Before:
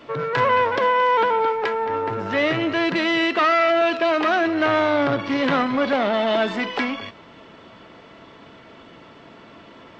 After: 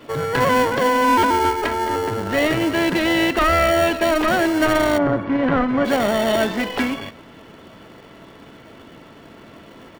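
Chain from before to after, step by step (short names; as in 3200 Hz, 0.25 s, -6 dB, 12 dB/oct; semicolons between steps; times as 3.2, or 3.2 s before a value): 1.04–1.96 comb 3.2 ms, depth 75%; in parallel at -5 dB: sample-and-hold 35×; 4.97–5.84 on the sum: LPF 1400 Hz -> 2200 Hz 12 dB/oct; outdoor echo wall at 45 m, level -27 dB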